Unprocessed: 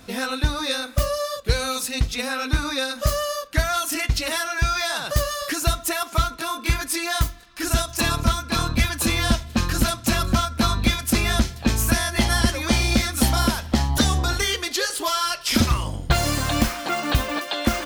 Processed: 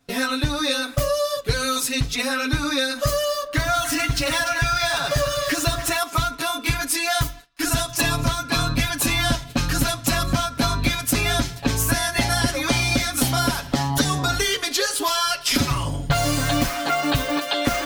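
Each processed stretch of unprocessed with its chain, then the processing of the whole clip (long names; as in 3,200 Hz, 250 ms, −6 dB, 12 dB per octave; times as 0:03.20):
0:03.24–0:05.98: running median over 3 samples + echo with a time of its own for lows and highs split 1,300 Hz, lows 105 ms, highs 293 ms, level −10.5 dB
whole clip: noise gate with hold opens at −26 dBFS; comb filter 7.1 ms, depth 95%; downward compressor 2 to 1, threshold −21 dBFS; level +1.5 dB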